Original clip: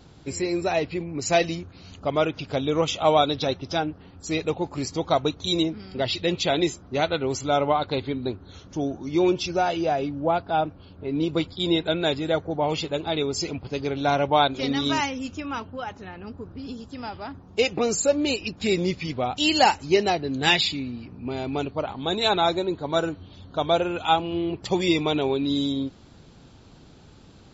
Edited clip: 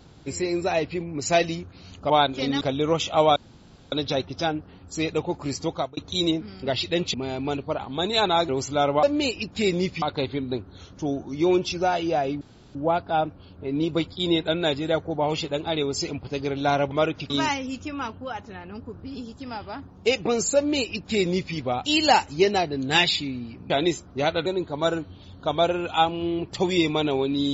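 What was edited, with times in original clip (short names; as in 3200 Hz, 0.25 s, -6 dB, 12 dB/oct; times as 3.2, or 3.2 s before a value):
2.1–2.49 swap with 14.31–14.82
3.24 insert room tone 0.56 s
4.98–5.29 fade out
6.46–7.22 swap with 21.22–22.57
10.15 insert room tone 0.34 s
18.08–19.07 copy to 7.76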